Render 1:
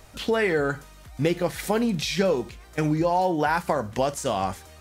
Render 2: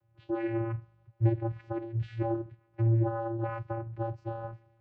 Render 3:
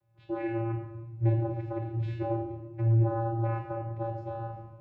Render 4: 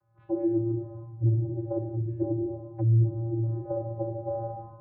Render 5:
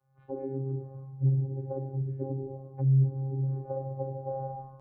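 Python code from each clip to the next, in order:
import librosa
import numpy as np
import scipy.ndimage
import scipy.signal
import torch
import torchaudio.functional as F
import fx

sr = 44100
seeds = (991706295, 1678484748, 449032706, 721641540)

y1 = fx.vocoder(x, sr, bands=8, carrier='square', carrier_hz=114.0)
y1 = scipy.signal.sosfilt(scipy.signal.butter(2, 2100.0, 'lowpass', fs=sr, output='sos'), y1)
y1 = fx.band_widen(y1, sr, depth_pct=40)
y1 = y1 * 10.0 ** (-6.5 / 20.0)
y2 = fx.room_shoebox(y1, sr, seeds[0], volume_m3=530.0, walls='mixed', distance_m=1.2)
y2 = y2 * 10.0 ** (-2.0 / 20.0)
y3 = fx.envelope_lowpass(y2, sr, base_hz=230.0, top_hz=1300.0, q=2.5, full_db=-25.0, direction='down')
y4 = fx.robotise(y3, sr, hz=134.0)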